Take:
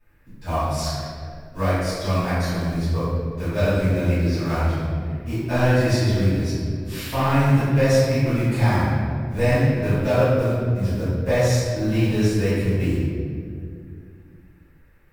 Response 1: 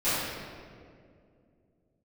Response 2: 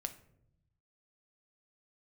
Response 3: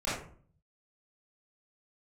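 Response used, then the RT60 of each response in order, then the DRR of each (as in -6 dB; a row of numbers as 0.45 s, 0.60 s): 1; 2.3 s, 0.75 s, 0.50 s; -18.0 dB, 7.5 dB, -11.5 dB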